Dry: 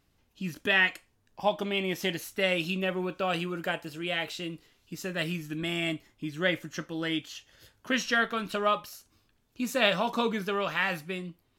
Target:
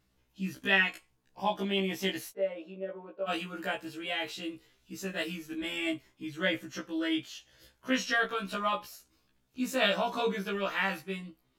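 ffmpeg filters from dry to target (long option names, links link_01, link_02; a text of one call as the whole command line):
ffmpeg -i in.wav -filter_complex "[0:a]asplit=3[link_01][link_02][link_03];[link_01]afade=type=out:start_time=2.3:duration=0.02[link_04];[link_02]bandpass=frequency=560:width_type=q:width=2.3:csg=0,afade=type=in:start_time=2.3:duration=0.02,afade=type=out:start_time=3.27:duration=0.02[link_05];[link_03]afade=type=in:start_time=3.27:duration=0.02[link_06];[link_04][link_05][link_06]amix=inputs=3:normalize=0,afftfilt=real='re*1.73*eq(mod(b,3),0)':imag='im*1.73*eq(mod(b,3),0)':win_size=2048:overlap=0.75" out.wav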